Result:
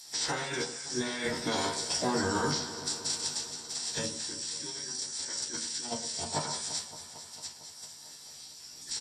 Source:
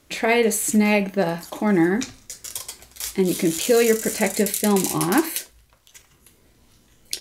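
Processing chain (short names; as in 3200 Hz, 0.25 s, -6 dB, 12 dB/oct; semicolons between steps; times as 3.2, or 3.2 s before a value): spectral limiter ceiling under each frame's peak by 20 dB; limiter -9.5 dBFS, peak gain reduction 9 dB; pre-emphasis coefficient 0.9; formant-preserving pitch shift -5.5 st; negative-ratio compressor -36 dBFS, ratio -1; varispeed -20%; doubler 13 ms -3.5 dB; echo with dull and thin repeats by turns 0.113 s, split 1300 Hz, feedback 85%, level -12.5 dB; reverb RT60 0.20 s, pre-delay 19 ms, DRR 6.5 dB; mismatched tape noise reduction encoder only; gain -7 dB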